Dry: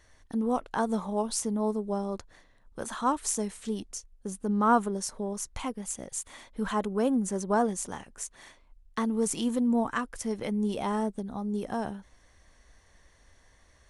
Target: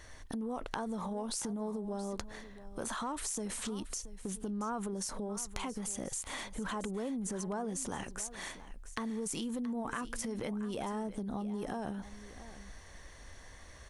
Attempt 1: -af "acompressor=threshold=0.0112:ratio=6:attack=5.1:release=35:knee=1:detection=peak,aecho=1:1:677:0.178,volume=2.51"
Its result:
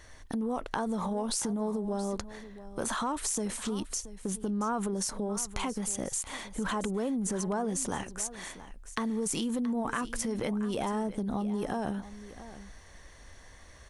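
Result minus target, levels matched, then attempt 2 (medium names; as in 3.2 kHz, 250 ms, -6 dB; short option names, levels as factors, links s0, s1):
compression: peak gain reduction -6 dB
-af "acompressor=threshold=0.00501:ratio=6:attack=5.1:release=35:knee=1:detection=peak,aecho=1:1:677:0.178,volume=2.51"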